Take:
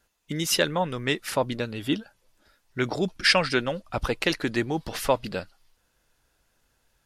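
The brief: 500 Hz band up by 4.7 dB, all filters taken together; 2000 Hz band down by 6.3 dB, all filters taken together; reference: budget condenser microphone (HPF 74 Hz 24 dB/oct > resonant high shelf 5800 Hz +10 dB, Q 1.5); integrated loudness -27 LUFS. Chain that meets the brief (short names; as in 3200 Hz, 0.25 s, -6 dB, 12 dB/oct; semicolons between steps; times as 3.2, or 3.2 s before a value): HPF 74 Hz 24 dB/oct; bell 500 Hz +6 dB; bell 2000 Hz -7.5 dB; resonant high shelf 5800 Hz +10 dB, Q 1.5; gain -3 dB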